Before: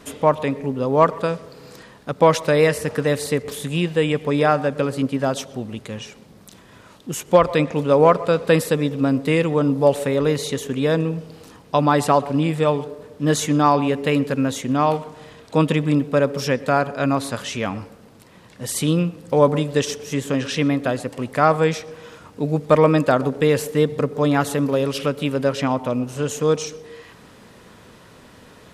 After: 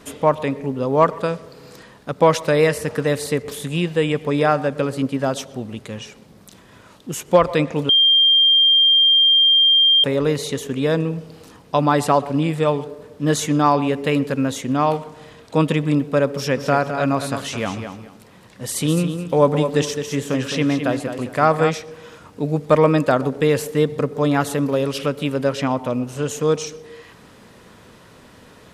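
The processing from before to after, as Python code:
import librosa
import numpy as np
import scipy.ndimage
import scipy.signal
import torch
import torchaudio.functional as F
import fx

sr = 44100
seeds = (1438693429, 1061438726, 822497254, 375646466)

y = fx.echo_feedback(x, sr, ms=212, feedback_pct=22, wet_db=-8.5, at=(16.55, 21.69), fade=0.02)
y = fx.edit(y, sr, fx.bleep(start_s=7.89, length_s=2.15, hz=3190.0, db=-10.5), tone=tone)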